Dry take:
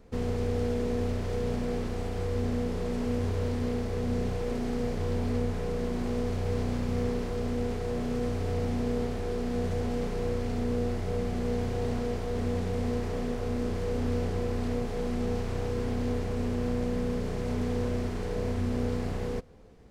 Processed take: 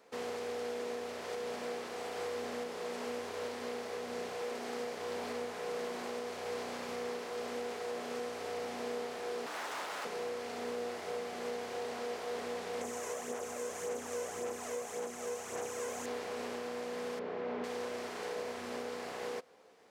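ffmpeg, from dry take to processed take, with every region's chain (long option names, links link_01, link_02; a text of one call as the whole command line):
ffmpeg -i in.wav -filter_complex "[0:a]asettb=1/sr,asplit=3[link_01][link_02][link_03];[link_01]atrim=end=9.464[link_04];[link_02]atrim=start=9.46:end=10.05,asetpts=PTS-STARTPTS,afade=type=in:duration=0.004:curve=qsin,afade=type=out:start_time=0.586:duration=0.004:curve=qsin,aecho=1:1:1.4:0.66,atrim=end_sample=26019,aeval=exprs='0.02*(abs(mod(val(0)/0.02+3,4)-2)-1)':channel_layout=same[link_05];[link_03]atrim=start=10.046[link_06];[link_04][link_05]acrossfade=duration=0.004:curve1=hsin:curve2=qsin[link_07];[link_07][link_06]acrossfade=duration=0.004:curve1=qsin:curve2=hsin,asettb=1/sr,asplit=3[link_08][link_09][link_10];[link_08]atrim=end=12.814[link_11];[link_09]atrim=start=12.81:end=16.06,asetpts=PTS-STARTPTS,afade=type=in:duration=0.004:curve=qsin,afade=type=out:start_time=3.246:duration=0.004:curve=qsin,highshelf=frequency=5500:width_type=q:width=3:gain=6.5,aphaser=in_gain=1:out_gain=1:delay=2:decay=0.45:speed=1.8:type=sinusoidal[link_12];[link_10]atrim=start=16.056[link_13];[link_11][link_12]acrossfade=duration=0.004:curve1=hsin:curve2=qsin[link_14];[link_14][link_13]acrossfade=duration=0.004:curve1=qsin:curve2=hsin,asettb=1/sr,asplit=3[link_15][link_16][link_17];[link_15]atrim=end=17.194[link_18];[link_16]atrim=start=17.19:end=17.64,asetpts=PTS-STARTPTS,afade=type=in:duration=0.004:curve=qsin,afade=type=out:start_time=0.446:duration=0.004:curve=qsin,highpass=220,lowpass=3700,aemphasis=mode=reproduction:type=riaa[link_19];[link_17]atrim=start=17.636[link_20];[link_18][link_19]acrossfade=duration=0.004:curve1=hsin:curve2=qsin[link_21];[link_21][link_20]acrossfade=duration=0.004:curve1=qsin:curve2=hsin,highpass=600,alimiter=level_in=7.5dB:limit=-24dB:level=0:latency=1:release=476,volume=-7.5dB,volume=2dB" out.wav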